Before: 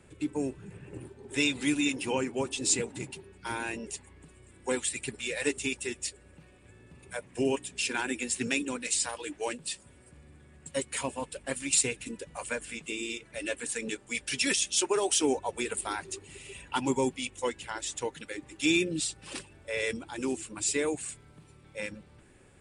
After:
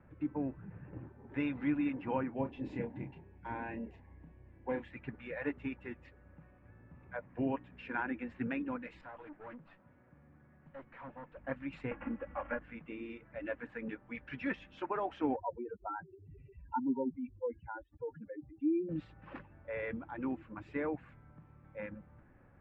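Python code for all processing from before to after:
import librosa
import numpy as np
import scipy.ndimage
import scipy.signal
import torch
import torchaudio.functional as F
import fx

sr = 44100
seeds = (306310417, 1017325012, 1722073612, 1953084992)

y = fx.chain(x, sr, fx.peak_eq(hz=1300.0, db=-14.0, octaves=0.41),
    fx.doubler(ms=30.0, db=-7.0), at=(2.34, 4.91))
y = fx.chain(y, sr, fx.bandpass_edges(low_hz=120.0, high_hz=7300.0),
    fx.tube_stage(drive_db=41.0, bias=0.35),
    fx.doppler_dist(depth_ms=0.18), at=(9.01, 11.37))
y = fx.chain(y, sr, fx.cvsd(bps=16000),
    fx.comb(ms=3.6, depth=0.98),
    fx.band_squash(depth_pct=70), at=(11.91, 12.59))
y = fx.chain(y, sr, fx.spec_expand(power=2.9),
    fx.lowpass(hz=1200.0, slope=12), at=(15.36, 18.89))
y = scipy.signal.sosfilt(scipy.signal.butter(4, 1700.0, 'lowpass', fs=sr, output='sos'), y)
y = fx.peak_eq(y, sr, hz=400.0, db=-12.0, octaves=0.34)
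y = y * librosa.db_to_amplitude(-2.0)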